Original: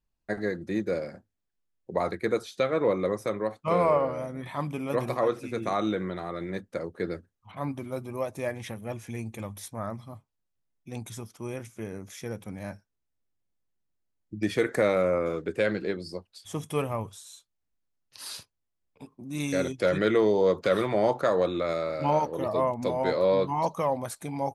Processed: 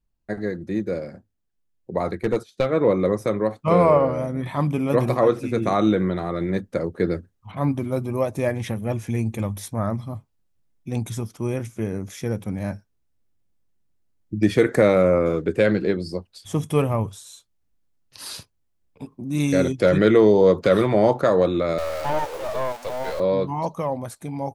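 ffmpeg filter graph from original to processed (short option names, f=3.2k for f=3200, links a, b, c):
-filter_complex "[0:a]asettb=1/sr,asplit=3[a][b][c];[a]atrim=end=2.234[d];[b]atrim=start=2.23:end=2.68,asetpts=PTS-STARTPTS,afade=t=in:d=0.004:c=qsin,afade=t=out:st=0.446:d=0.004:c=qsin,agate=range=-12dB:threshold=-41dB:ratio=16:release=100:detection=peak,aeval=exprs='clip(val(0),-1,0.0708)':c=same[e];[c]atrim=start=2.676[f];[d][e]acrossfade=d=0.004:c1=hsin:c2=qsin[g];[g][f]acrossfade=d=0.004:c1=qsin:c2=hsin,asettb=1/sr,asplit=3[h][i][j];[h]atrim=end=21.784[k];[i]atrim=start=21.78:end=23.2,asetpts=PTS-STARTPTS,afade=t=in:d=0.004:c=qsin,afade=t=out:st=1.416:d=0.004:c=qsin,aeval=exprs='val(0)+0.5*0.0355*sgn(val(0))':c=same,highpass=f=520:w=0.5412,highpass=f=520:w=1.3066,aeval=exprs='(tanh(11.2*val(0)+0.6)-tanh(0.6))/11.2':c=same[l];[j]atrim=start=23.196[m];[k][l]acrossfade=d=0.004:c1=hsin:c2=qsin[n];[n][m]acrossfade=d=0.004:c1=qsin:c2=hsin,lowshelf=f=410:g=8,dynaudnorm=f=170:g=31:m=7dB,volume=-1.5dB"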